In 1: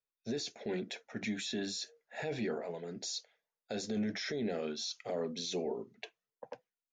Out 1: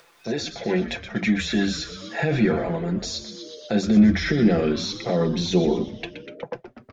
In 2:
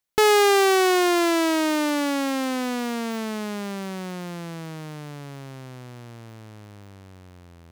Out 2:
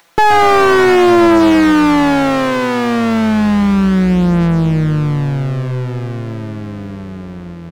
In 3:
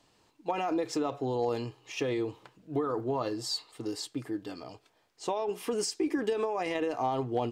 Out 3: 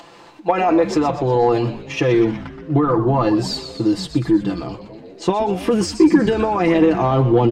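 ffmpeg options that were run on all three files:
-filter_complex "[0:a]agate=range=0.447:threshold=0.00316:ratio=16:detection=peak,aecho=1:1:5.9:0.64,asubboost=boost=9:cutoff=200,asplit=7[s0][s1][s2][s3][s4][s5][s6];[s1]adelay=122,afreqshift=-130,volume=0.282[s7];[s2]adelay=244,afreqshift=-260,volume=0.158[s8];[s3]adelay=366,afreqshift=-390,volume=0.0881[s9];[s4]adelay=488,afreqshift=-520,volume=0.0495[s10];[s5]adelay=610,afreqshift=-650,volume=0.0279[s11];[s6]adelay=732,afreqshift=-780,volume=0.0155[s12];[s0][s7][s8][s9][s10][s11][s12]amix=inputs=7:normalize=0,asplit=2[s13][s14];[s14]highpass=f=720:p=1,volume=12.6,asoftclip=type=tanh:threshold=0.75[s15];[s13][s15]amix=inputs=2:normalize=0,lowpass=f=1100:p=1,volume=0.501,acompressor=mode=upward:threshold=0.0224:ratio=2.5,volume=1.5"

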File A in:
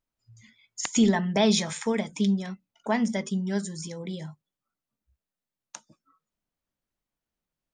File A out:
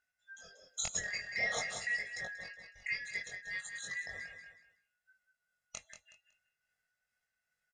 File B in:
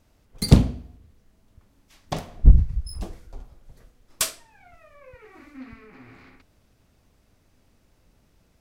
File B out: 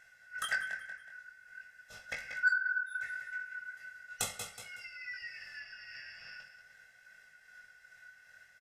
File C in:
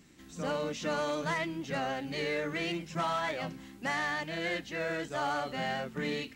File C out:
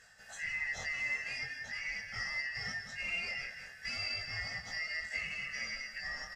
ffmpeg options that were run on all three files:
-filter_complex "[0:a]afftfilt=real='real(if(lt(b,272),68*(eq(floor(b/68),0)*2+eq(floor(b/68),1)*0+eq(floor(b/68),2)*3+eq(floor(b/68),3)*1)+mod(b,68),b),0)':imag='imag(if(lt(b,272),68*(eq(floor(b/68),0)*2+eq(floor(b/68),1)*0+eq(floor(b/68),2)*3+eq(floor(b/68),3)*1)+mod(b,68),b),0)':win_size=2048:overlap=0.75,tremolo=f=2.5:d=0.36,highshelf=f=3100:g=-9,asplit=2[s0][s1];[s1]aecho=0:1:185|370|555:0.282|0.0648|0.0149[s2];[s0][s2]amix=inputs=2:normalize=0,acontrast=66,aresample=32000,aresample=44100,bandreject=f=4500:w=16,acompressor=threshold=0.00794:ratio=2,aecho=1:1:1.5:0.81,flanger=delay=18:depth=4.9:speed=0.42,equalizer=f=7600:w=0.75:g=5.5"

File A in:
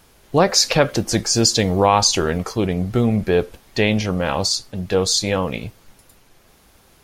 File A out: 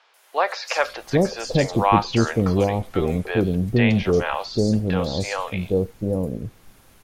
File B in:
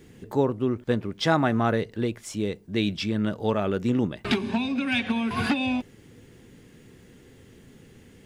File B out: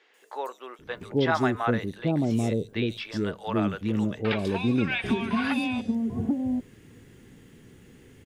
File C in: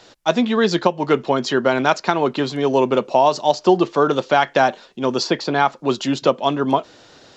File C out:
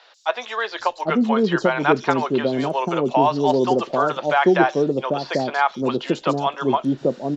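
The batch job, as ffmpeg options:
-filter_complex "[0:a]acrossover=split=590|4700[s0][s1][s2];[s2]adelay=140[s3];[s0]adelay=790[s4];[s4][s1][s3]amix=inputs=3:normalize=0,acrossover=split=3100[s5][s6];[s6]acompressor=threshold=0.0112:ratio=4:attack=1:release=60[s7];[s5][s7]amix=inputs=2:normalize=0"

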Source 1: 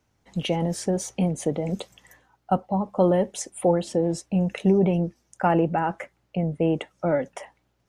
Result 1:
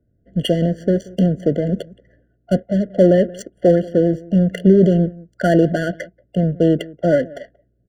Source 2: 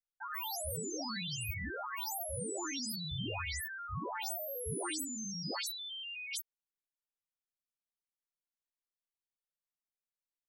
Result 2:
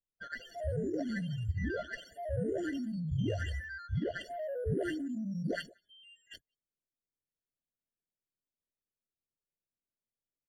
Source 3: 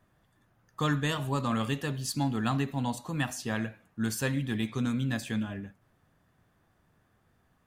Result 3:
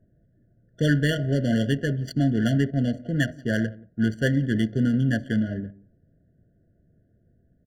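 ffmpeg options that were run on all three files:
-filter_complex "[0:a]asplit=2[s0][s1];[s1]adelay=180.8,volume=0.0891,highshelf=f=4000:g=-4.07[s2];[s0][s2]amix=inputs=2:normalize=0,adynamicsmooth=sensitivity=6:basefreq=580,afftfilt=real='re*eq(mod(floor(b*sr/1024/690),2),0)':imag='im*eq(mod(floor(b*sr/1024/690),2),0)':win_size=1024:overlap=0.75,volume=2.51"

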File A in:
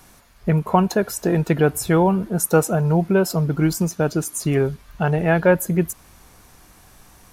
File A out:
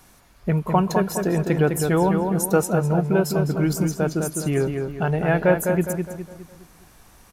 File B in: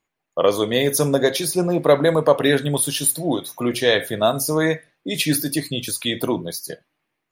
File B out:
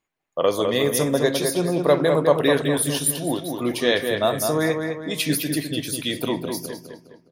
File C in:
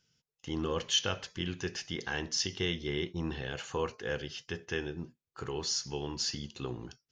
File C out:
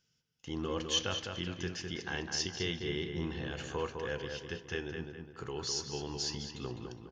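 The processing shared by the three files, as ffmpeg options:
-filter_complex "[0:a]asplit=2[s0][s1];[s1]adelay=206,lowpass=f=3300:p=1,volume=0.562,asplit=2[s2][s3];[s3]adelay=206,lowpass=f=3300:p=1,volume=0.44,asplit=2[s4][s5];[s5]adelay=206,lowpass=f=3300:p=1,volume=0.44,asplit=2[s6][s7];[s7]adelay=206,lowpass=f=3300:p=1,volume=0.44,asplit=2[s8][s9];[s9]adelay=206,lowpass=f=3300:p=1,volume=0.44[s10];[s0][s2][s4][s6][s8][s10]amix=inputs=6:normalize=0,volume=0.708"

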